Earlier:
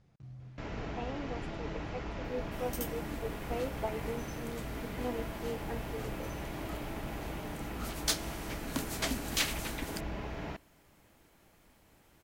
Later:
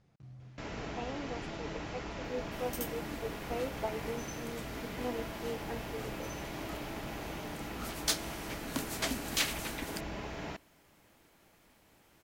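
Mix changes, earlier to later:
first sound: add high shelf 5300 Hz +11 dB; master: add low shelf 99 Hz -7 dB

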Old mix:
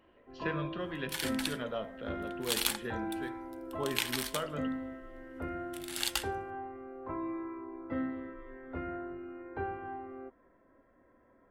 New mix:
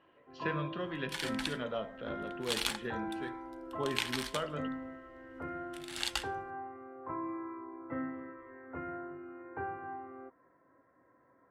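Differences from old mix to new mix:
first sound: add speaker cabinet 130–2200 Hz, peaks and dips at 130 Hz +6 dB, 220 Hz -9 dB, 390 Hz -4 dB, 610 Hz -4 dB, 1100 Hz +3 dB; second sound: add air absorption 52 m

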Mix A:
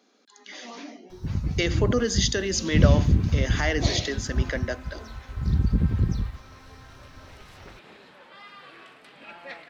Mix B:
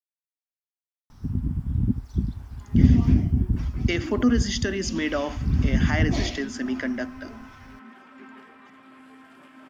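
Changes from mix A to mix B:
speech: entry +2.30 s; second sound: entry +2.40 s; master: add thirty-one-band EQ 250 Hz +10 dB, 500 Hz -8 dB, 4000 Hz -11 dB, 6300 Hz -6 dB

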